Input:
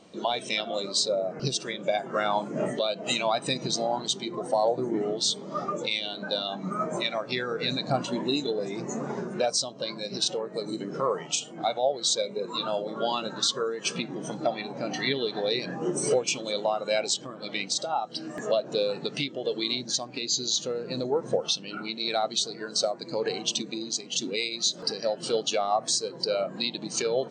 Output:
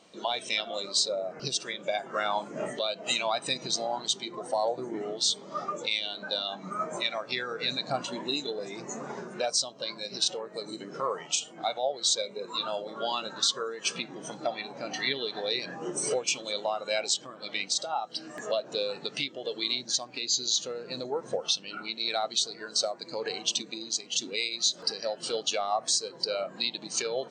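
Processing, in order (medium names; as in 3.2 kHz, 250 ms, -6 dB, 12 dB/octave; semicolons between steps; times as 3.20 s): bass shelf 500 Hz -10.5 dB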